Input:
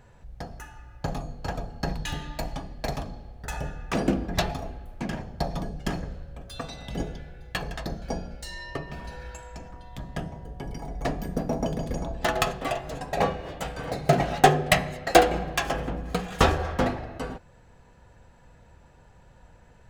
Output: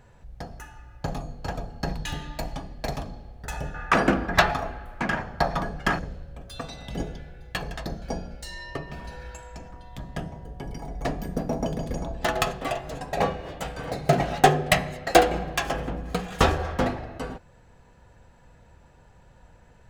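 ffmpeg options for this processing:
-filter_complex "[0:a]asettb=1/sr,asplit=3[s0][s1][s2];[s0]atrim=end=3.744[s3];[s1]atrim=start=3.74:end=5.99,asetpts=PTS-STARTPTS,afade=t=in:d=0.004:c=qsin,afade=t=out:st=2.246:d=0.004:c=qsin,equalizer=f=1400:w=0.76:g=15[s4];[s2]atrim=start=5.986[s5];[s3][s4]acrossfade=d=0.004:c1=hsin:c2=qsin[s6];[s6][s5]acrossfade=d=0.004:c1=qsin:c2=hsin"

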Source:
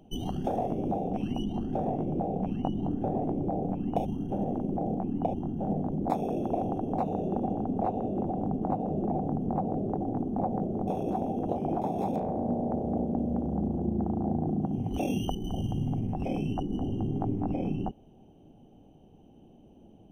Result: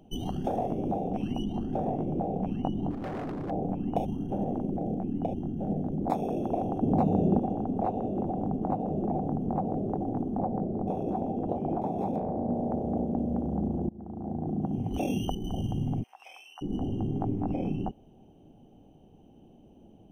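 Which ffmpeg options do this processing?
-filter_complex "[0:a]asplit=3[s0][s1][s2];[s0]afade=t=out:st=2.9:d=0.02[s3];[s1]volume=42.2,asoftclip=hard,volume=0.0237,afade=t=in:st=2.9:d=0.02,afade=t=out:st=3.49:d=0.02[s4];[s2]afade=t=in:st=3.49:d=0.02[s5];[s3][s4][s5]amix=inputs=3:normalize=0,asettb=1/sr,asplit=3[s6][s7][s8];[s6]atrim=end=4.704[s9];[s7]atrim=start=4.7:end=5.98,asetpts=PTS-STARTPTS,afade=t=in:d=0.004:c=qsin,afade=t=out:st=1.276:d=0.004:c=qsin,equalizer=f=1000:w=1.7:g=-8.5[s10];[s8]atrim=start=5.976[s11];[s9][s10]acrossfade=d=0.004:c1=hsin:c2=qsin[s12];[s12][s11]acrossfade=d=0.004:c1=qsin:c2=hsin,asettb=1/sr,asplit=3[s13][s14][s15];[s13]atrim=end=6.824[s16];[s14]atrim=start=6.82:end=7.39,asetpts=PTS-STARTPTS,afade=t=in:d=0.004:c=qsin,afade=t=out:st=0.566:d=0.004:c=qsin,equalizer=f=130:t=o:w=3:g=9.5[s17];[s15]atrim=start=7.386[s18];[s16][s17]acrossfade=d=0.004:c1=hsin:c2=qsin[s19];[s19][s18]acrossfade=d=0.004:c1=qsin:c2=hsin,asettb=1/sr,asplit=3[s20][s21][s22];[s20]atrim=end=10.374[s23];[s21]atrim=start=10.37:end=12.55,asetpts=PTS-STARTPTS,afade=t=in:d=0.004:c=qsin,afade=t=out:st=2.176:d=0.004:c=qsin,highshelf=f=2300:g=-10.5[s24];[s22]atrim=start=12.546[s25];[s23][s24]acrossfade=d=0.004:c1=hsin:c2=qsin[s26];[s26][s25]acrossfade=d=0.004:c1=qsin:c2=hsin,asplit=3[s27][s28][s29];[s27]afade=t=out:st=16.02:d=0.02[s30];[s28]highpass=f=1100:w=0.5412,highpass=f=1100:w=1.3066,afade=t=in:st=16.02:d=0.02,afade=t=out:st=16.61:d=0.02[s31];[s29]afade=t=in:st=16.61:d=0.02[s32];[s30][s31][s32]amix=inputs=3:normalize=0,asplit=2[s33][s34];[s33]atrim=end=13.89,asetpts=PTS-STARTPTS,afade=t=out:st=13.886:d=0.004:c=hsin:silence=0.0707946[s35];[s34]atrim=start=13.89,asetpts=PTS-STARTPTS,afade=t=in:d=0.81:silence=0.0707946[s36];[s35][s36]concat=n=2:v=0:a=1"

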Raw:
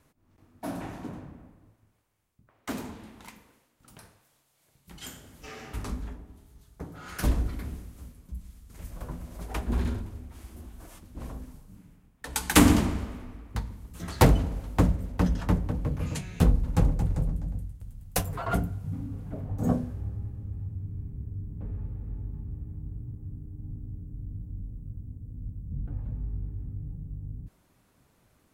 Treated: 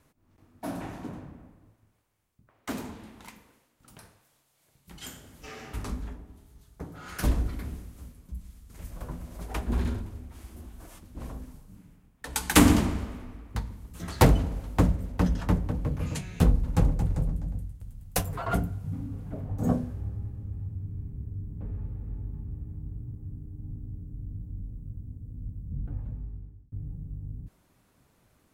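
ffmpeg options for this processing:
-filter_complex "[0:a]asplit=2[s0][s1];[s0]atrim=end=26.72,asetpts=PTS-STARTPTS,afade=t=out:st=25.95:d=0.77[s2];[s1]atrim=start=26.72,asetpts=PTS-STARTPTS,afade=t=in:d=0.004:c=hsin[s3];[s2][s3]concat=n=2:v=0:a=1"

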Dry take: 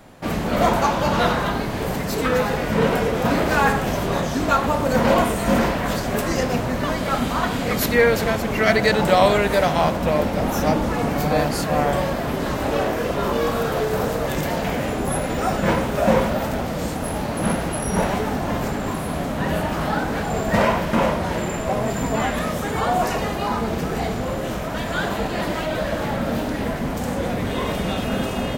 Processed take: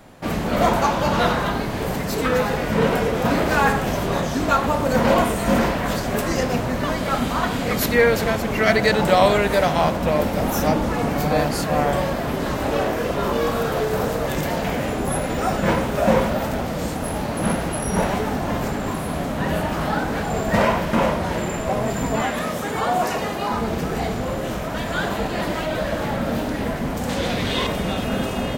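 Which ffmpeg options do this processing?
-filter_complex "[0:a]asettb=1/sr,asplit=3[s0][s1][s2];[s0]atrim=end=10.204[s3];[s1]atrim=start=10.2:end=10.67,asetpts=PTS-STARTPTS,afade=t=in:d=0.004:c=qsin,afade=t=out:st=0.466:d=0.004:c=qsin,highshelf=f=8900:g=7[s4];[s2]atrim=start=10.666[s5];[s3][s4]acrossfade=d=0.004:c1=hsin:c2=qsin[s6];[s6][s5]acrossfade=d=0.004:c1=qsin:c2=hsin,asettb=1/sr,asplit=3[s7][s8][s9];[s7]atrim=end=22.214[s10];[s8]atrim=start=22.21:end=23.53,asetpts=PTS-STARTPTS,afade=t=in:d=0.004:c=qsin,afade=t=out:st=1.316:d=0.004:c=qsin,highpass=f=160:p=1[s11];[s9]atrim=start=23.526[s12];[s10][s11]acrossfade=d=0.004:c1=hsin:c2=qsin[s13];[s13][s12]acrossfade=d=0.004:c1=qsin:c2=hsin,asettb=1/sr,asplit=3[s14][s15][s16];[s14]atrim=end=27.094[s17];[s15]atrim=start=27.09:end=27.67,asetpts=PTS-STARTPTS,afade=t=in:d=0.004:c=qsin,afade=t=out:st=0.576:d=0.004:c=qsin,equalizer=f=3900:w=0.79:g=11[s18];[s16]atrim=start=27.666[s19];[s17][s18]acrossfade=d=0.004:c1=hsin:c2=qsin[s20];[s20][s19]acrossfade=d=0.004:c1=qsin:c2=hsin"

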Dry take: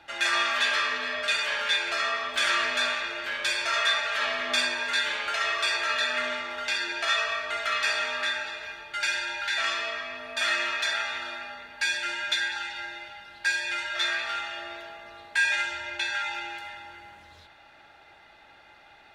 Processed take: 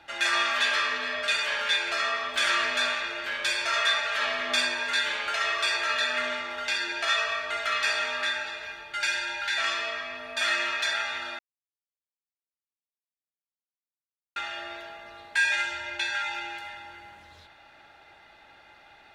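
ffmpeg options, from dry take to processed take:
-filter_complex "[0:a]asplit=3[s0][s1][s2];[s0]atrim=end=11.39,asetpts=PTS-STARTPTS,afade=t=out:st=11.386:d=0.004:c=hsin[s3];[s1]atrim=start=11.39:end=14.36,asetpts=PTS-STARTPTS,volume=0[s4];[s2]atrim=start=14.36,asetpts=PTS-STARTPTS,afade=t=in:d=0.004:c=hsin[s5];[s3][s4][s5]concat=n=3:v=0:a=1"

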